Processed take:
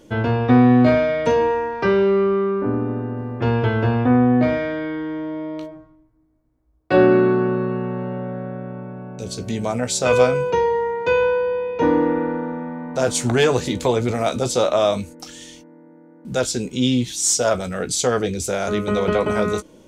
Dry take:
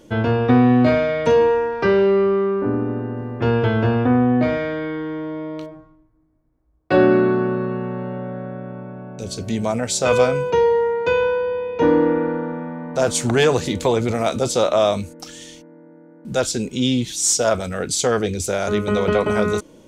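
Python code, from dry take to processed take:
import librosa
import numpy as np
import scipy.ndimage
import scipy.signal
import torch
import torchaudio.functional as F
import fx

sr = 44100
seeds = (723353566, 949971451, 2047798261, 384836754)

y = fx.doubler(x, sr, ms=16.0, db=-11.0)
y = y * 10.0 ** (-1.0 / 20.0)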